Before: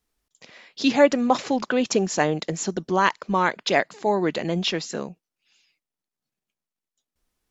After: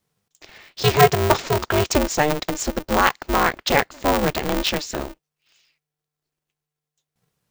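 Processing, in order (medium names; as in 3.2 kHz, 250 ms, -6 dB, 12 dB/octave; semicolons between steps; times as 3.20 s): polarity switched at an audio rate 150 Hz; trim +2.5 dB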